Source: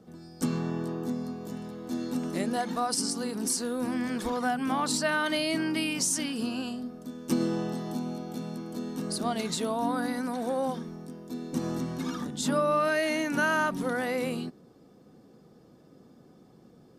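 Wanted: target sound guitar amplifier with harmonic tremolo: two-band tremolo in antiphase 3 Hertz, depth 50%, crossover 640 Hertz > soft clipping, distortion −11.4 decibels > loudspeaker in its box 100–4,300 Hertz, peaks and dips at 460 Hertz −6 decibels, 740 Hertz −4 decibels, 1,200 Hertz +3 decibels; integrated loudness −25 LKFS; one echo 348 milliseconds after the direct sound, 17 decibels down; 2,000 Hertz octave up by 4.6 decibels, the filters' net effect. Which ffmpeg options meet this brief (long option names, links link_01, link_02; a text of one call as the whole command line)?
ffmpeg -i in.wav -filter_complex "[0:a]equalizer=frequency=2000:width_type=o:gain=6,aecho=1:1:348:0.141,acrossover=split=640[link_01][link_02];[link_01]aeval=exprs='val(0)*(1-0.5/2+0.5/2*cos(2*PI*3*n/s))':channel_layout=same[link_03];[link_02]aeval=exprs='val(0)*(1-0.5/2-0.5/2*cos(2*PI*3*n/s))':channel_layout=same[link_04];[link_03][link_04]amix=inputs=2:normalize=0,asoftclip=threshold=-27.5dB,highpass=100,equalizer=frequency=460:width_type=q:width=4:gain=-6,equalizer=frequency=740:width_type=q:width=4:gain=-4,equalizer=frequency=1200:width_type=q:width=4:gain=3,lowpass=frequency=4300:width=0.5412,lowpass=frequency=4300:width=1.3066,volume=10dB" out.wav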